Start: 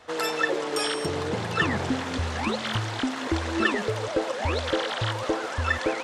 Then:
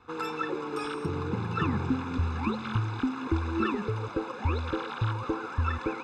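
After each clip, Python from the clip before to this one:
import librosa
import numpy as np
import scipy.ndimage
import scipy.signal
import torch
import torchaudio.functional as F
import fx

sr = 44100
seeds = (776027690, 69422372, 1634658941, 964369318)

y = fx.lowpass(x, sr, hz=1100.0, slope=6)
y = y + 0.91 * np.pad(y, (int(0.8 * sr / 1000.0), 0))[:len(y)]
y = F.gain(torch.from_numpy(y), -4.0).numpy()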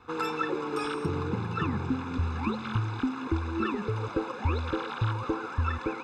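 y = fx.rider(x, sr, range_db=10, speed_s=0.5)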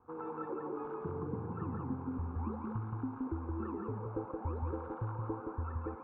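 y = fx.ladder_lowpass(x, sr, hz=1200.0, resonance_pct=25)
y = y + 10.0 ** (-3.0 / 20.0) * np.pad(y, (int(172 * sr / 1000.0), 0))[:len(y)]
y = F.gain(torch.from_numpy(y), -4.5).numpy()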